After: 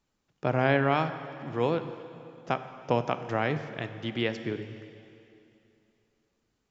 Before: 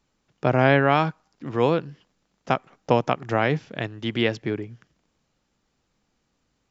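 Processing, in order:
dense smooth reverb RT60 2.8 s, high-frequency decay 0.95×, DRR 9.5 dB
level −6.5 dB

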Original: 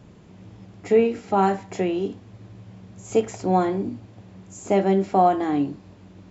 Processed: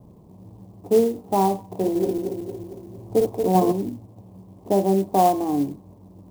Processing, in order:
0:01.61–0:03.72: feedback delay that plays each chunk backwards 114 ms, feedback 73%, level −3.5 dB
Butterworth low-pass 1,100 Hz 72 dB per octave
converter with an unsteady clock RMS 0.029 ms

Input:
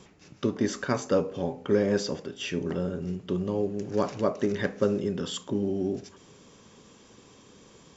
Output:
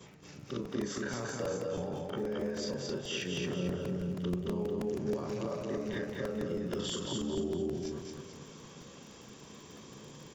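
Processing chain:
every overlapping window played backwards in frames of 67 ms
high-pass filter 59 Hz 6 dB per octave
parametric band 140 Hz +8 dB 0.23 octaves
downward compressor 8 to 1, threshold −34 dBFS, peak gain reduction 13 dB
brickwall limiter −32 dBFS, peak gain reduction 8 dB
surface crackle 24 per second −49 dBFS
tempo change 0.77×
repeating echo 222 ms, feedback 41%, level −3 dB
regular buffer underruns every 0.16 s, samples 128, repeat, from 0:00.65
level +4 dB

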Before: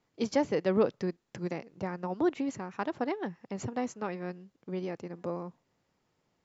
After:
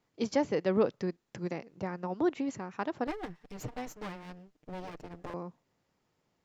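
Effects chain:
0:03.07–0:05.34: lower of the sound and its delayed copy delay 6.6 ms
level −1 dB

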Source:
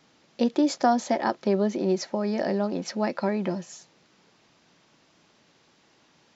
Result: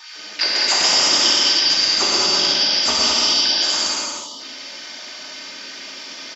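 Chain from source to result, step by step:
band-splitting scrambler in four parts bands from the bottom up 4321
auto-filter high-pass sine 3.4 Hz 220–2,400 Hz
on a send: bouncing-ball delay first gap 120 ms, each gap 0.75×, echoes 5
on the sum: gain on a spectral selection 0:04.04–0:04.39, 1,300–2,800 Hz −21 dB
low-shelf EQ 150 Hz +6 dB
comb filter 3.3 ms, depth 48%
reverb whose tail is shaped and stops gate 250 ms flat, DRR −4.5 dB
every bin compressed towards the loudest bin 2 to 1

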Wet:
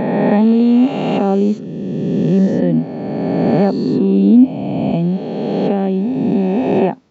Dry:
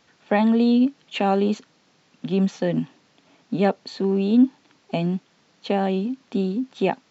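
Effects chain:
peak hold with a rise ahead of every peak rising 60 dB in 2.71 s
tilt shelving filter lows +8 dB, about 710 Hz

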